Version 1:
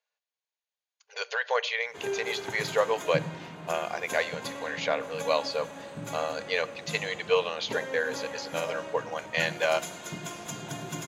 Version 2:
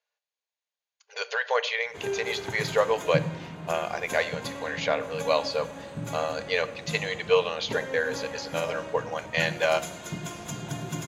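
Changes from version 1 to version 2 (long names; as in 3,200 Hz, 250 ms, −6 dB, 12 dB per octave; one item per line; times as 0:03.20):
speech: send +6.0 dB
master: remove high-pass filter 240 Hz 6 dB per octave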